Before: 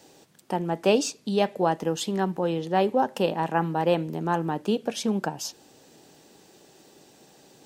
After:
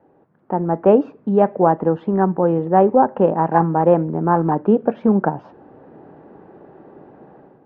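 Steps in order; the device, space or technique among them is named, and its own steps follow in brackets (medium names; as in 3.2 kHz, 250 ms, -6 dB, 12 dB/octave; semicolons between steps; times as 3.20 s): action camera in a waterproof case (low-pass 1.4 kHz 24 dB/octave; level rider gain up to 12.5 dB; AAC 64 kbps 48 kHz)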